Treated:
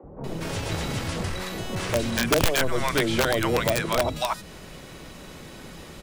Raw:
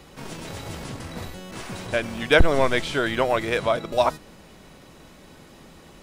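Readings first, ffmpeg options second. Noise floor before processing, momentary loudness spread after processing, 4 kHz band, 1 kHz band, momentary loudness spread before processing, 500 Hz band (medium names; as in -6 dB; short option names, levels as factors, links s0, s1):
-49 dBFS, 20 LU, +2.0 dB, -1.5 dB, 18 LU, -2.5 dB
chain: -filter_complex "[0:a]acrossover=split=250|840[s0][s1][s2];[s0]adelay=30[s3];[s2]adelay=240[s4];[s3][s1][s4]amix=inputs=3:normalize=0,acrossover=split=390|2300|6800[s5][s6][s7][s8];[s5]acompressor=threshold=0.0355:ratio=4[s9];[s6]acompressor=threshold=0.0224:ratio=4[s10];[s7]acompressor=threshold=0.00891:ratio=4[s11];[s8]acompressor=threshold=0.00251:ratio=4[s12];[s9][s10][s11][s12]amix=inputs=4:normalize=0,aeval=exprs='(mod(10*val(0)+1,2)-1)/10':c=same,volume=2.24"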